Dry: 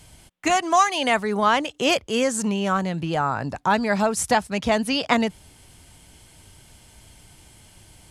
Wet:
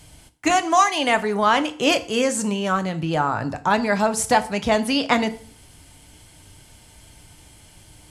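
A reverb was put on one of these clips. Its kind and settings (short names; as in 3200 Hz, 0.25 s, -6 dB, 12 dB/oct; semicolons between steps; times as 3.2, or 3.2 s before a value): FDN reverb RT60 0.47 s, low-frequency decay 1.1×, high-frequency decay 0.9×, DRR 9 dB; gain +1 dB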